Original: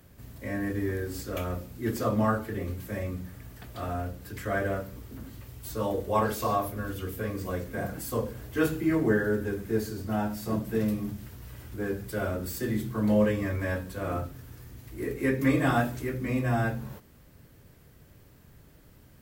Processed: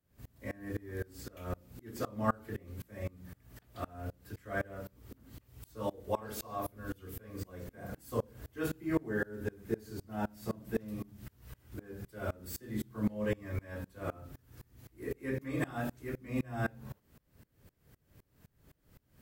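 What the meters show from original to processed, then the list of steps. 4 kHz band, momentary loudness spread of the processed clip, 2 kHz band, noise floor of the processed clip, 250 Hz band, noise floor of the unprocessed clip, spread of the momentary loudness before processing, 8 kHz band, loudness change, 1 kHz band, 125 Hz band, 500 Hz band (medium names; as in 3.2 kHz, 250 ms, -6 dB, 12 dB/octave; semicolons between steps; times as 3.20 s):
-9.5 dB, 18 LU, -9.0 dB, -73 dBFS, -10.0 dB, -56 dBFS, 17 LU, -8.5 dB, -9.5 dB, -9.5 dB, -9.5 dB, -9.5 dB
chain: sawtooth tremolo in dB swelling 3.9 Hz, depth 28 dB; trim -1 dB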